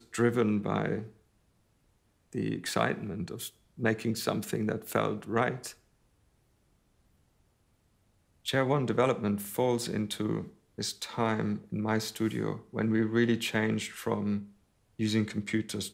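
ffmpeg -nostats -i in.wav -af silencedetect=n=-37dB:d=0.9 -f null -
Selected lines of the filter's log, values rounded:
silence_start: 1.04
silence_end: 2.33 | silence_duration: 1.29
silence_start: 5.71
silence_end: 8.46 | silence_duration: 2.76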